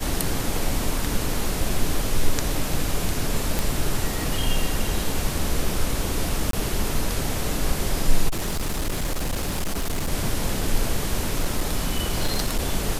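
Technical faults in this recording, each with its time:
3.59 s: pop
6.51–6.53 s: dropout 23 ms
8.28–10.12 s: clipped -21 dBFS
11.29–12.63 s: clipped -16.5 dBFS

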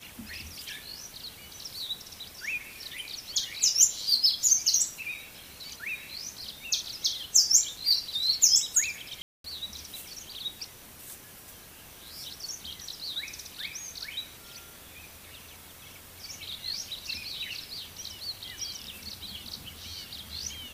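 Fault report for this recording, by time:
9.22–9.44 s: dropout 223 ms

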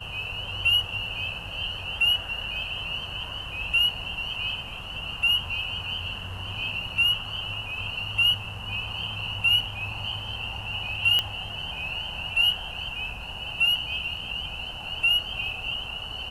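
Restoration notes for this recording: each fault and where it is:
11.19 s: pop -10 dBFS

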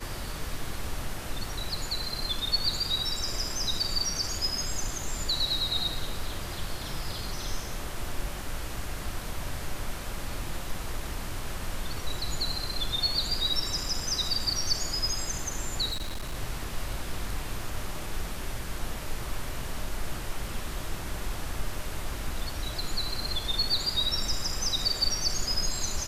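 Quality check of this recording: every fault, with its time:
15.91–16.34 s: clipped -29 dBFS

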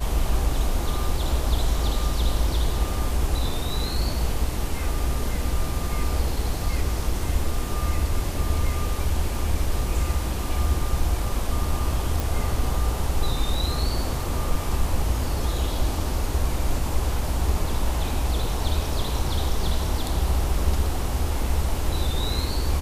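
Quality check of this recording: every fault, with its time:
12.20 s: pop

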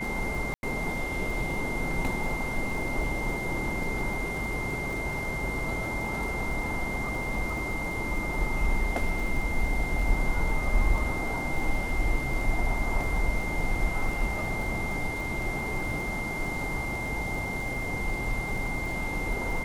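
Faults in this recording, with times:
crackle 30 per s -34 dBFS
whine 2.1 kHz -33 dBFS
0.54–0.63 s: dropout 91 ms

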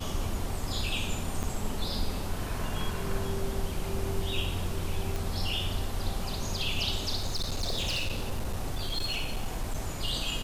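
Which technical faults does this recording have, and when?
1.43–1.44 s: dropout 6 ms
5.16 s: pop
7.16–9.81 s: clipped -26 dBFS

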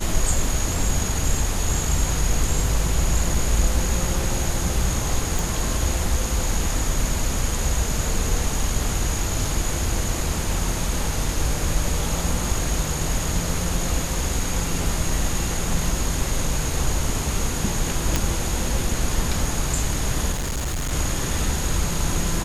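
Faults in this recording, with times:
5.39 s: pop
18.16 s: pop
20.32–20.93 s: clipped -22.5 dBFS

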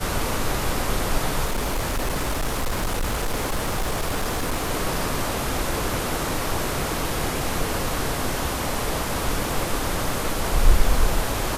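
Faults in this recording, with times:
1.45–4.71 s: clipped -20 dBFS

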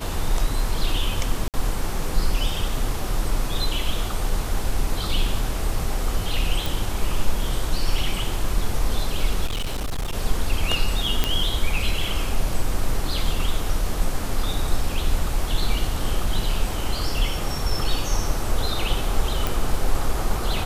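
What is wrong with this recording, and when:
1.48–1.54 s: dropout 58 ms
6.66 s: pop
9.46–10.13 s: clipped -22 dBFS
11.24 s: pop -5 dBFS
19.47 s: pop

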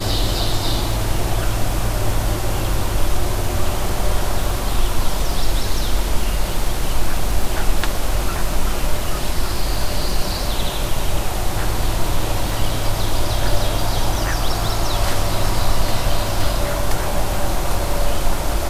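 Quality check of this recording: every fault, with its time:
crackle 11 per s -23 dBFS

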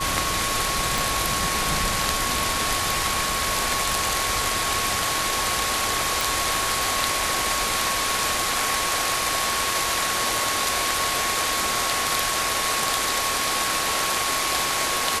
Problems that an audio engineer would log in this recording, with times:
whine 1.1 kHz -28 dBFS
0.98 s: pop
6.21 s: pop

